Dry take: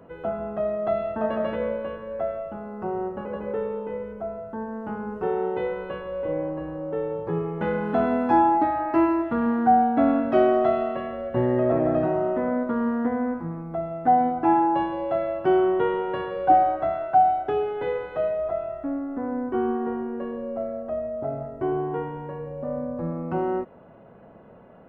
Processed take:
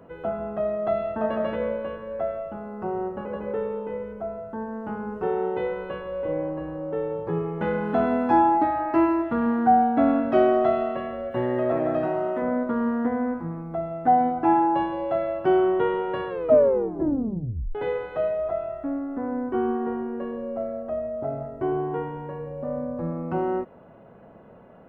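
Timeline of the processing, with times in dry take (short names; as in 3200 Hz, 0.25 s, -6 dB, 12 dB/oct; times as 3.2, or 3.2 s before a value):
11.31–12.42 tilt +2 dB/oct
16.28 tape stop 1.47 s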